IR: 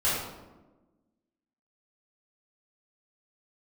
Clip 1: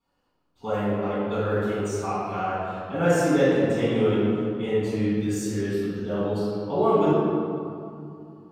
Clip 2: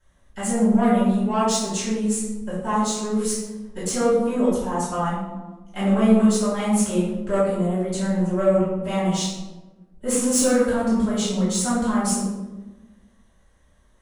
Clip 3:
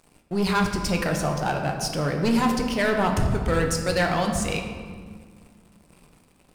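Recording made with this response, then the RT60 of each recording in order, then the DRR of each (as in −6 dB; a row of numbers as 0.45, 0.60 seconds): 2; 2.6, 1.2, 1.8 seconds; −15.5, −12.0, 2.5 decibels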